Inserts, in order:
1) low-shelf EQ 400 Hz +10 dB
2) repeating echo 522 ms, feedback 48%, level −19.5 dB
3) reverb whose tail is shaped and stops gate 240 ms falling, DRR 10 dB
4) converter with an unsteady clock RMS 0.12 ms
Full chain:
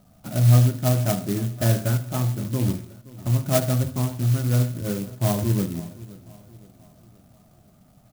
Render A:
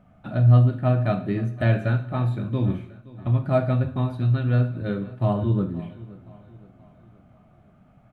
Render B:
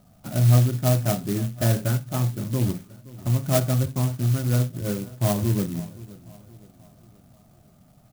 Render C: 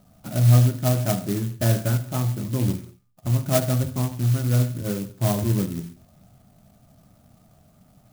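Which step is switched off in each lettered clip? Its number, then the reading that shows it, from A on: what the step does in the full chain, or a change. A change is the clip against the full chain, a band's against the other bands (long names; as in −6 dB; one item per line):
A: 4, 2 kHz band +1.5 dB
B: 3, change in momentary loudness spread −4 LU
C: 2, change in momentary loudness spread −4 LU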